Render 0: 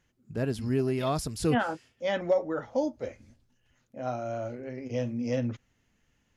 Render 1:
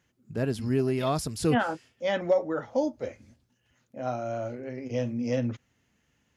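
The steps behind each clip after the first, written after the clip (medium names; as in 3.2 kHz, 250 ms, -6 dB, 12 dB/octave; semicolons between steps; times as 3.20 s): high-pass 69 Hz; trim +1.5 dB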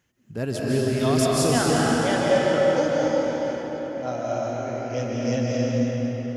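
treble shelf 8.8 kHz +5 dB; reverberation RT60 5.1 s, pre-delay 110 ms, DRR -5.5 dB; dynamic bell 6.5 kHz, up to +7 dB, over -50 dBFS, Q 0.86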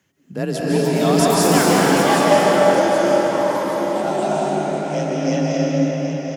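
feedback delay 773 ms, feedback 40%, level -9 dB; ever faster or slower copies 461 ms, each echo +6 st, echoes 2, each echo -6 dB; frequency shift +35 Hz; trim +4.5 dB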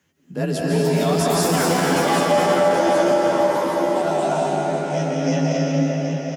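peak limiter -9 dBFS, peak gain reduction 7.5 dB; doubling 12 ms -3 dB; trim -2 dB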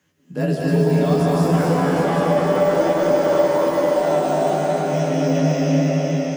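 de-esser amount 90%; on a send: thinning echo 293 ms, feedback 76%, high-pass 160 Hz, level -9 dB; on the sum: simulated room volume 99 m³, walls mixed, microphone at 0.46 m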